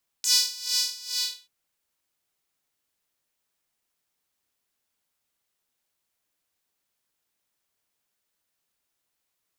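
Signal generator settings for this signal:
subtractive patch with tremolo B4, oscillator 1 saw, sub −17 dB, filter highpass, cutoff 3,700 Hz, Q 3.8, filter envelope 1 octave, filter decay 0.07 s, attack 1.2 ms, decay 0.58 s, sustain −5.5 dB, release 0.37 s, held 0.87 s, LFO 2.3 Hz, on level 18.5 dB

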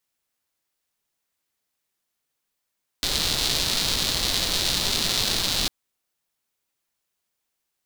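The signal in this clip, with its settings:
rain-like ticks over hiss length 2.65 s, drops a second 300, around 4,000 Hz, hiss −4.5 dB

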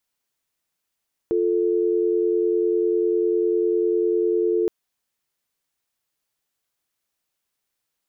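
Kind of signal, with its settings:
call progress tone dial tone, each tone −20.5 dBFS 3.37 s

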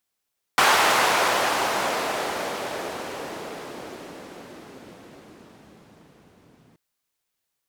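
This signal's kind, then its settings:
filter sweep on noise white, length 6.18 s bandpass, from 1,000 Hz, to 160 Hz, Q 1.1, exponential, gain ramp −32.5 dB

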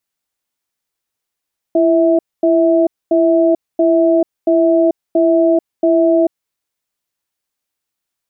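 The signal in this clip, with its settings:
tone pair in a cadence 335 Hz, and 653 Hz, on 0.44 s, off 0.24 s, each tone −11.5 dBFS 4.56 s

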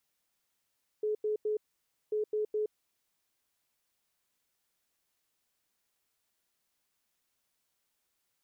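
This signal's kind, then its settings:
beeps in groups sine 426 Hz, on 0.12 s, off 0.09 s, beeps 3, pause 0.55 s, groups 2, −28 dBFS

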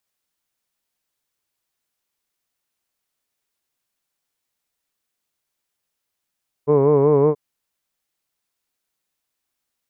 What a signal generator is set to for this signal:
vowel by formant synthesis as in hood, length 0.68 s, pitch 142 Hz, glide +0.5 semitones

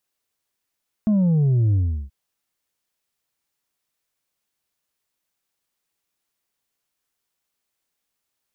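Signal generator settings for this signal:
bass drop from 220 Hz, over 1.03 s, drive 3.5 dB, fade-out 0.36 s, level −15.5 dB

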